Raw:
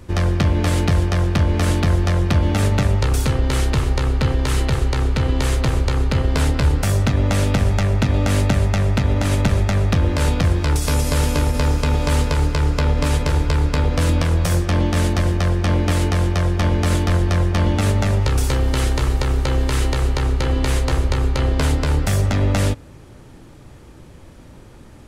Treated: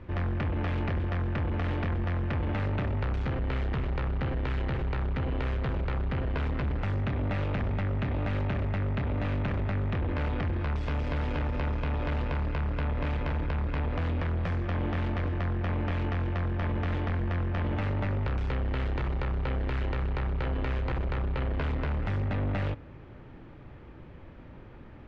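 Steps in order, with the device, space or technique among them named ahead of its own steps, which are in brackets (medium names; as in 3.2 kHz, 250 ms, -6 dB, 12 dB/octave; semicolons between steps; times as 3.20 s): overdriven synthesiser ladder filter (saturation -21.5 dBFS, distortion -9 dB; four-pole ladder low-pass 3.2 kHz, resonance 20%)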